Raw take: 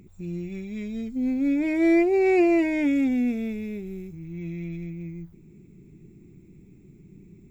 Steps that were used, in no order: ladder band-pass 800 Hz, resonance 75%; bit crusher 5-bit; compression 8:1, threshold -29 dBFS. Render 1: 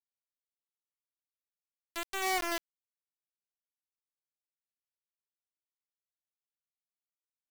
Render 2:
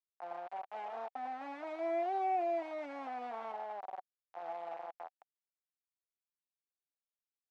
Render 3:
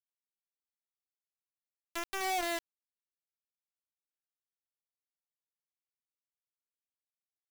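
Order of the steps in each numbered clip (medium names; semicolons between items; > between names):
ladder band-pass > compression > bit crusher; bit crusher > ladder band-pass > compression; ladder band-pass > bit crusher > compression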